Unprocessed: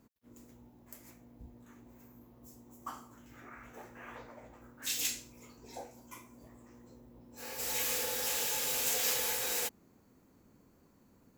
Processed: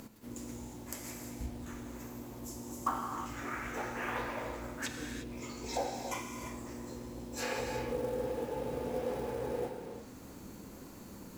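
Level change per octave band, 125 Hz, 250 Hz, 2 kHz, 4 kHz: +11.5, +11.5, +0.5, −9.0 decibels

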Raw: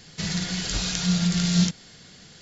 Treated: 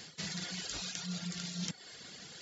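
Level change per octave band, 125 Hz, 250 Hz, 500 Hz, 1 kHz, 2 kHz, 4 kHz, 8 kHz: −18.5 dB, −18.5 dB, −12.5 dB, −12.0 dB, −11.0 dB, −11.5 dB, can't be measured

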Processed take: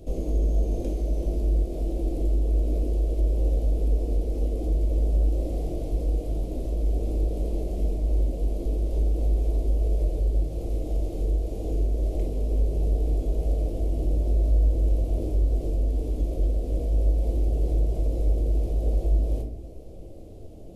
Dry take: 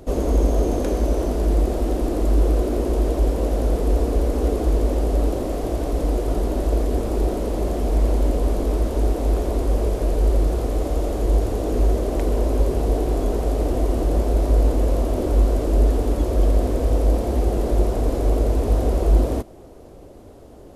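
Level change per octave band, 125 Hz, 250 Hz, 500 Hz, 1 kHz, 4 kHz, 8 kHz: −4.0, −9.5, −11.0, −16.0, −13.0, −13.5 decibels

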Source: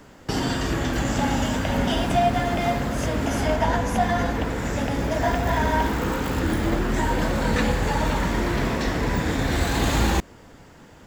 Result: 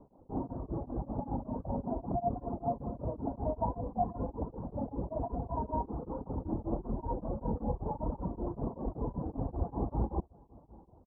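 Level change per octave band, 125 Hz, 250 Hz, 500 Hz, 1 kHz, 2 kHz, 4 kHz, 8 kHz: −12.5 dB, −12.5 dB, −12.0 dB, −13.0 dB, below −40 dB, below −40 dB, below −40 dB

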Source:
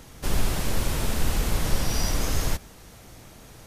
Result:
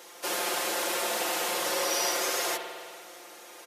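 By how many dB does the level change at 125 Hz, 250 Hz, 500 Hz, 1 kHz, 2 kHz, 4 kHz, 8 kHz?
−31.0, −8.0, +3.0, +4.0, +3.5, +3.0, +2.5 decibels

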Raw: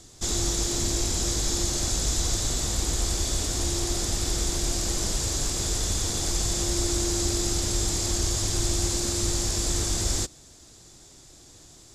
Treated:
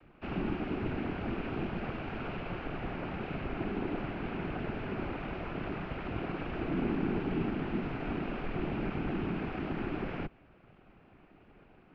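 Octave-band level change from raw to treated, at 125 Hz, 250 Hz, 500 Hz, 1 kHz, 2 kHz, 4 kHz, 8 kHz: −8.5 dB, −1.0 dB, −3.5 dB, −1.5 dB, −2.0 dB, −23.0 dB, below −40 dB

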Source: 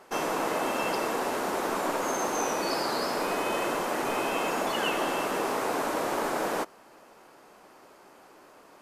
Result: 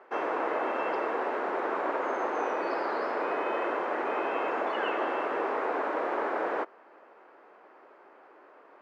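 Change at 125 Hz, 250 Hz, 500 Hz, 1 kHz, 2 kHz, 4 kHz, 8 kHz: below −15 dB, −4.0 dB, −0.5 dB, −1.0 dB, −1.5 dB, −12.0 dB, below −25 dB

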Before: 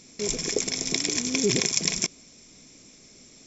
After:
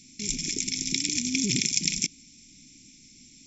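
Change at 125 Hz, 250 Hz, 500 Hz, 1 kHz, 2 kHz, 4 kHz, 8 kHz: −1.0 dB, −1.0 dB, −16.0 dB, below −35 dB, −2.0 dB, −1.0 dB, can't be measured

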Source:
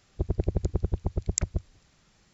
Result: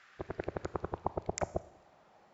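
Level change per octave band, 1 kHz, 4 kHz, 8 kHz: +8.5 dB, −10.0 dB, can't be measured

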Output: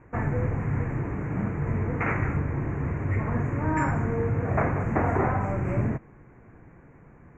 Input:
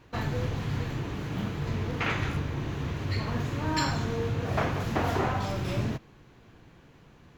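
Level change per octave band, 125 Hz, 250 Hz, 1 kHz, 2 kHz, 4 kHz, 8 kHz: +4.0 dB, +4.0 dB, +2.5 dB, +1.5 dB, below −25 dB, below −10 dB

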